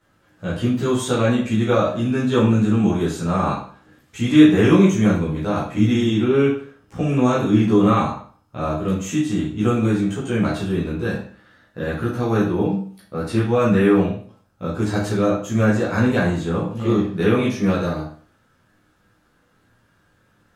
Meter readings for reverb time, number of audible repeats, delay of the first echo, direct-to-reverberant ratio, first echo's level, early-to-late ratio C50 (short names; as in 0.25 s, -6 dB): 0.45 s, none, none, -8.5 dB, none, 4.0 dB